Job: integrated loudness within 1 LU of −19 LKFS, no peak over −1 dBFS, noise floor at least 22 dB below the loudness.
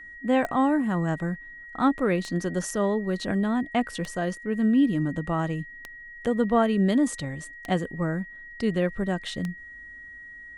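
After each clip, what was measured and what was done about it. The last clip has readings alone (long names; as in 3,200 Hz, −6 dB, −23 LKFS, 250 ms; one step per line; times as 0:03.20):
number of clicks 6; interfering tone 1,900 Hz; level of the tone −41 dBFS; integrated loudness −26.0 LKFS; sample peak −10.5 dBFS; target loudness −19.0 LKFS
→ click removal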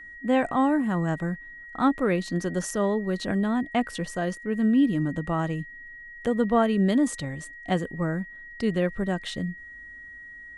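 number of clicks 0; interfering tone 1,900 Hz; level of the tone −41 dBFS
→ notch filter 1,900 Hz, Q 30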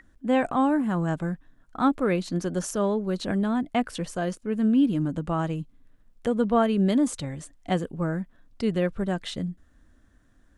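interfering tone none found; integrated loudness −26.5 LKFS; sample peak −10.5 dBFS; target loudness −19.0 LKFS
→ level +7.5 dB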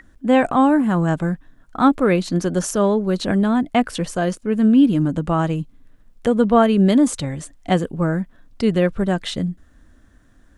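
integrated loudness −19.0 LKFS; sample peak −3.0 dBFS; background noise floor −52 dBFS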